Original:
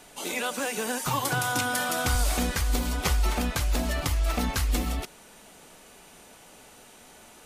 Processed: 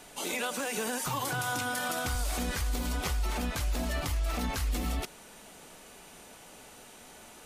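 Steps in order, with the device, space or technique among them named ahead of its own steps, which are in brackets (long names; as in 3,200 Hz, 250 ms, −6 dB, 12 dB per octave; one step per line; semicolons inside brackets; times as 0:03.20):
clipper into limiter (hard clipping −16 dBFS, distortion −41 dB; brickwall limiter −23.5 dBFS, peak gain reduction 7.5 dB)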